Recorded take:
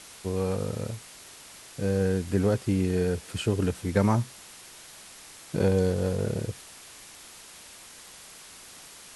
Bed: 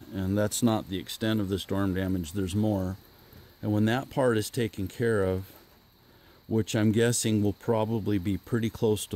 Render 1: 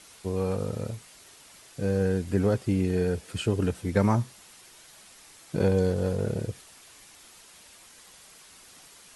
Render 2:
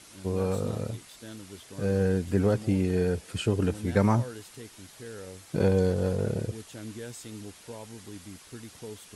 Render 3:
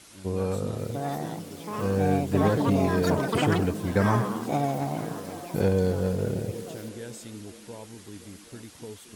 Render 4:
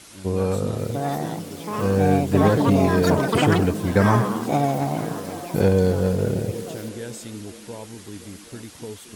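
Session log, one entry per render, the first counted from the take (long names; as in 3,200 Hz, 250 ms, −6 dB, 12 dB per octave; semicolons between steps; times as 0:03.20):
broadband denoise 6 dB, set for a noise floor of −48 dBFS
mix in bed −16.5 dB
delay with pitch and tempo change per echo 781 ms, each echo +7 semitones, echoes 3; echo through a band-pass that steps 260 ms, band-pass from 230 Hz, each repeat 0.7 octaves, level −8.5 dB
level +5.5 dB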